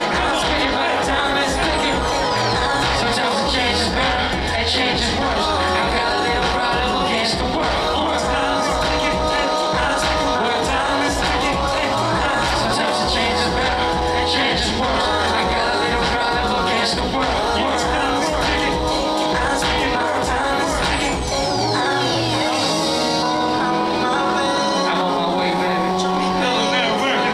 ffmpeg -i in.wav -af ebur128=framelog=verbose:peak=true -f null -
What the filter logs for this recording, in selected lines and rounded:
Integrated loudness:
  I:         -18.1 LUFS
  Threshold: -28.1 LUFS
Loudness range:
  LRA:         0.8 LU
  Threshold: -38.2 LUFS
  LRA low:   -18.5 LUFS
  LRA high:  -17.7 LUFS
True peak:
  Peak:       -6.0 dBFS